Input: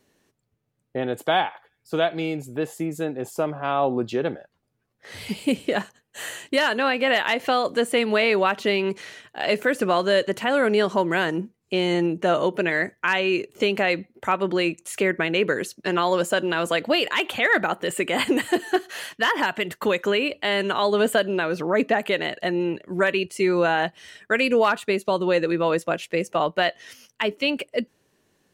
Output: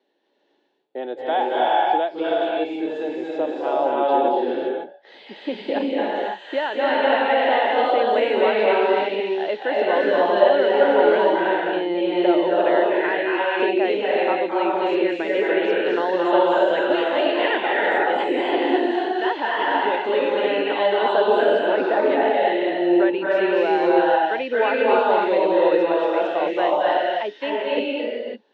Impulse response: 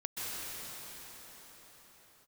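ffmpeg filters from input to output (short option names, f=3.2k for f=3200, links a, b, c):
-filter_complex "[0:a]highpass=f=280:w=0.5412,highpass=f=280:w=1.3066,equalizer=f=340:t=q:w=4:g=5,equalizer=f=560:t=q:w=4:g=4,equalizer=f=840:t=q:w=4:g=8,equalizer=f=1.2k:t=q:w=4:g=-7,equalizer=f=2.3k:t=q:w=4:g=-4,equalizer=f=3.6k:t=q:w=4:g=6,lowpass=f=4k:w=0.5412,lowpass=f=4k:w=1.3066,acrossover=split=2800[a][b];[b]acompressor=threshold=-44dB:ratio=4:attack=1:release=60[c];[a][c]amix=inputs=2:normalize=0[d];[1:a]atrim=start_sample=2205,afade=t=out:st=0.37:d=0.01,atrim=end_sample=16758,asetrate=25137,aresample=44100[e];[d][e]afir=irnorm=-1:irlink=0,volume=-4dB"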